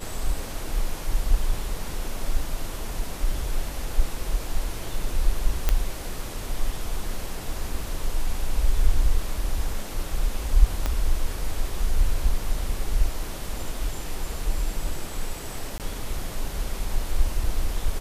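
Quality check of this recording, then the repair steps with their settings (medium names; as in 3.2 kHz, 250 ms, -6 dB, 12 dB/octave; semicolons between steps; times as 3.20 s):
5.69 s: pop -7 dBFS
10.86 s: pop -11 dBFS
15.78–15.80 s: dropout 18 ms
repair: de-click; interpolate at 15.78 s, 18 ms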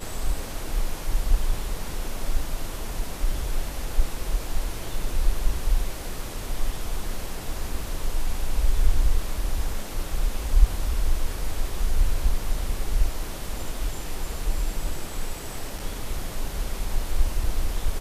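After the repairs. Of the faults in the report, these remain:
10.86 s: pop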